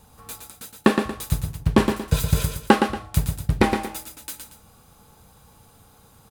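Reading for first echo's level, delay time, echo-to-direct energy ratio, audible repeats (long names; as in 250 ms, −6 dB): −6.0 dB, 116 ms, −5.5 dB, 2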